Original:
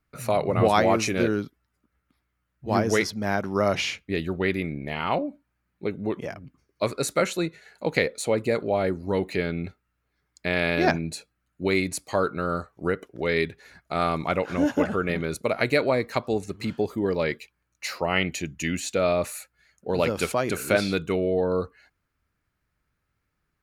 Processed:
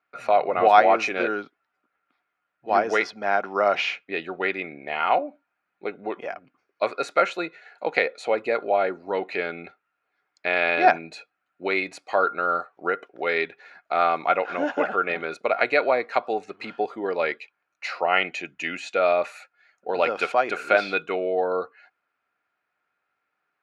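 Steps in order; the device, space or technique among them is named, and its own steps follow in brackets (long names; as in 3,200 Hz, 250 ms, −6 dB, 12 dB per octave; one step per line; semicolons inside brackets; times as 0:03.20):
tin-can telephone (band-pass filter 500–3,000 Hz; hollow resonant body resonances 740/1,400/2,500 Hz, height 9 dB)
level +3 dB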